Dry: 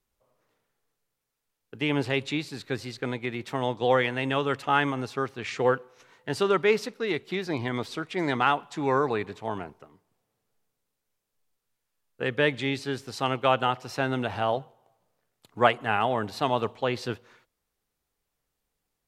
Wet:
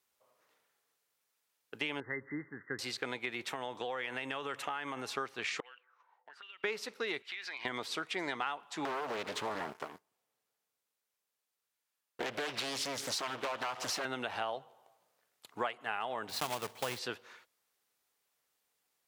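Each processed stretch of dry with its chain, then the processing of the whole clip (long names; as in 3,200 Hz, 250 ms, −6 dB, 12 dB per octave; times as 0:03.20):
0:02.00–0:02.79: linear-phase brick-wall low-pass 2,100 Hz + parametric band 700 Hz −14.5 dB 1.1 octaves
0:03.49–0:05.09: parametric band 4,600 Hz −9 dB 0.37 octaves + downward compressor, threshold −30 dBFS
0:05.60–0:06.64: envelope filter 700–2,800 Hz, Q 8.3, up, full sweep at −21 dBFS + downward compressor 12 to 1, threshold −50 dBFS
0:07.22–0:07.65: resonant band-pass 2,000 Hz, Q 1.4 + high-shelf EQ 2,100 Hz +9 dB + downward compressor 12 to 1, threshold −40 dBFS
0:08.85–0:14.05: downward compressor 2.5 to 1, threshold −39 dBFS + leveller curve on the samples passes 3 + highs frequency-modulated by the lows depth 0.94 ms
0:16.29–0:16.99: one scale factor per block 3 bits + parametric band 120 Hz +10 dB 1.4 octaves
whole clip: high-pass filter 860 Hz 6 dB per octave; downward compressor 6 to 1, threshold −37 dBFS; level +3.5 dB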